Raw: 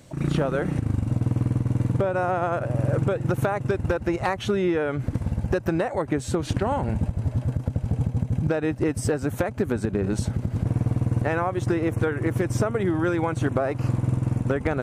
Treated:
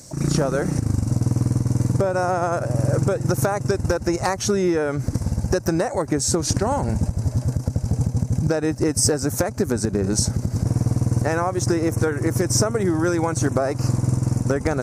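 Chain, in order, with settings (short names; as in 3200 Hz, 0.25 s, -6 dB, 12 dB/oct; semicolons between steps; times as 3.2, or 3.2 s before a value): resonant high shelf 4200 Hz +9.5 dB, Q 3; gain +3 dB; Vorbis 192 kbps 48000 Hz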